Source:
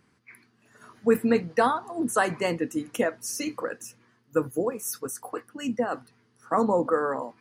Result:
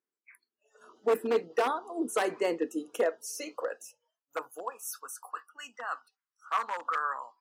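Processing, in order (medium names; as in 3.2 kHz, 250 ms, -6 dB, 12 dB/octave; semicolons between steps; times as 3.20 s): wavefolder -16.5 dBFS; spectral noise reduction 25 dB; high-pass sweep 390 Hz -> 1.2 kHz, 2.77–5.31 s; trim -6.5 dB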